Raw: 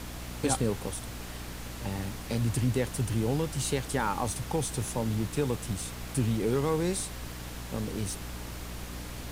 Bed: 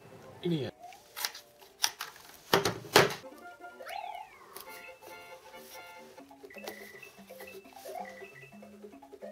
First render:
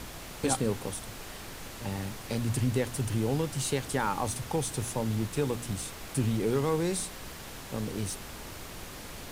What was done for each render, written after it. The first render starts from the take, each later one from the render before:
hum removal 60 Hz, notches 5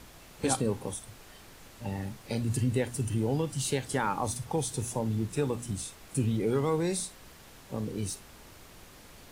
noise reduction from a noise print 9 dB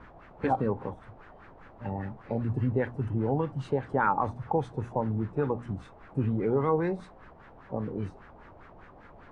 auto-filter low-pass sine 5 Hz 710–1,700 Hz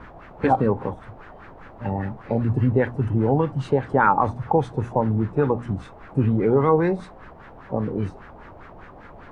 level +8 dB

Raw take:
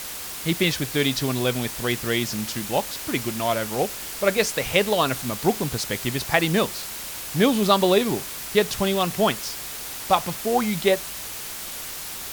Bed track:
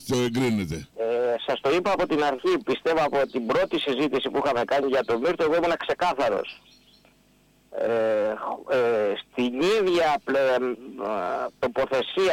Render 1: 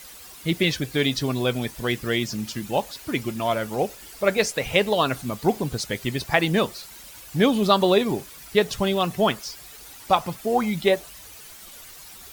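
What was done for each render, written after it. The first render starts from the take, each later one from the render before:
broadband denoise 12 dB, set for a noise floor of −34 dBFS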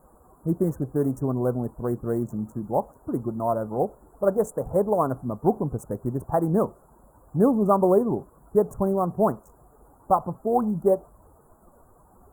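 adaptive Wiener filter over 15 samples
inverse Chebyshev band-stop filter 2,300–4,600 Hz, stop band 60 dB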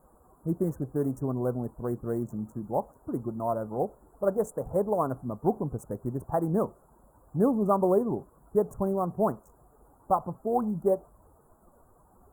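level −4.5 dB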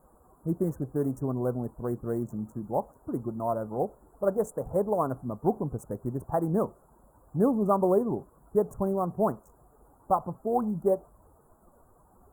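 no processing that can be heard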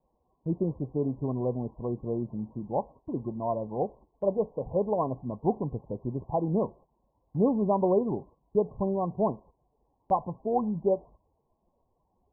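Chebyshev low-pass filter 1,100 Hz, order 10
noise gate −49 dBFS, range −13 dB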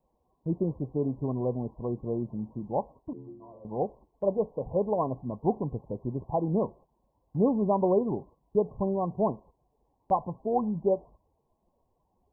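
0:03.13–0:03.65: stiff-string resonator 64 Hz, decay 0.85 s, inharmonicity 0.008

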